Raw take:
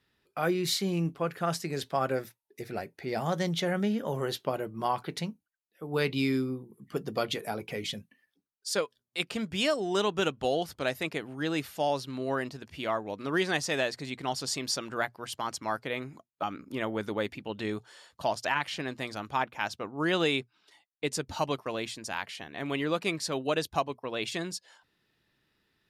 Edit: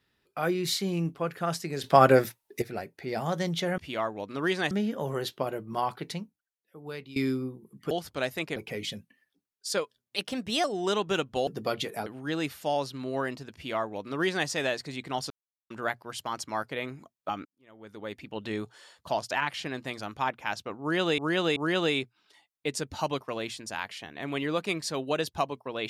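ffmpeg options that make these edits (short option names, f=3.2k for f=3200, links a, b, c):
-filter_complex "[0:a]asplit=17[a][b][c][d][e][f][g][h][i][j][k][l][m][n][o][p][q];[a]atrim=end=1.842[r];[b]atrim=start=1.838:end=2.622,asetpts=PTS-STARTPTS,volume=11dB[s];[c]atrim=start=2.618:end=3.782[t];[d]atrim=start=12.678:end=13.612[u];[e]atrim=start=3.778:end=6.23,asetpts=PTS-STARTPTS,afade=t=out:st=1.212:d=1.24:silence=0.125893[v];[f]atrim=start=6.23:end=6.982,asetpts=PTS-STARTPTS,afade=t=in:d=0.004:c=hsin:silence=0.125893[w];[g]atrim=start=10.548:end=11.202[x];[h]atrim=start=7.568:end=9.174[y];[i]atrim=start=9.17:end=9.72,asetpts=PTS-STARTPTS,asetrate=50274,aresample=44100,atrim=end_sample=21276,asetpts=PTS-STARTPTS[z];[j]atrim=start=9.716:end=10.552[aa];[k]atrim=start=6.978:end=7.572[ab];[l]atrim=start=11.198:end=14.44,asetpts=PTS-STARTPTS,afade=t=out:st=3.238:d=0.004:c=hsin[ac];[m]atrim=start=14.44:end=14.84,asetpts=PTS-STARTPTS,volume=0[ad];[n]atrim=start=14.84:end=16.59,asetpts=PTS-STARTPTS,afade=t=in:d=0.004:c=hsin,afade=t=out:st=1.746:d=0.004:c=hsin[ae];[o]atrim=start=16.59:end=20.322,asetpts=PTS-STARTPTS,afade=t=in:d=0.93:c=qua[af];[p]atrim=start=19.938:end=20.322[ag];[q]atrim=start=19.938[ah];[r][s]acrossfade=d=0.004:c1=hsin:c2=hsin[ai];[ai][t]acrossfade=d=0.004:c1=hsin:c2=hsin[aj];[aj][u]acrossfade=d=0.004:c1=hsin:c2=hsin[ak];[v][w]concat=n=2:v=0:a=1[al];[ak][al]acrossfade=d=0.004:c1=hsin:c2=hsin[am];[am][x]acrossfade=d=0.004:c1=hsin:c2=hsin[an];[an][y]acrossfade=d=0.004:c1=hsin:c2=hsin[ao];[ao][z]acrossfade=d=0.004:c1=hsin:c2=hsin[ap];[ap][aa]acrossfade=d=0.004:c1=hsin:c2=hsin[aq];[aq][ab]acrossfade=d=0.004:c1=hsin:c2=hsin[ar];[ac][ad][ae][af]concat=n=4:v=0:a=1[as];[ar][as]acrossfade=d=0.004:c1=hsin:c2=hsin[at];[at][ag]acrossfade=d=0.004:c1=hsin:c2=hsin[au];[au][ah]acrossfade=d=0.004:c1=hsin:c2=hsin"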